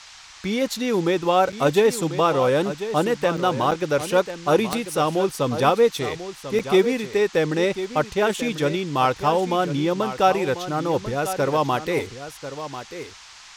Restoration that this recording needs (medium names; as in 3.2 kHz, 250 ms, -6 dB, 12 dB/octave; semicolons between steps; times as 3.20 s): de-click; interpolate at 1.52/3.37/3.71/6.59 s, 6 ms; noise print and reduce 25 dB; inverse comb 1043 ms -11.5 dB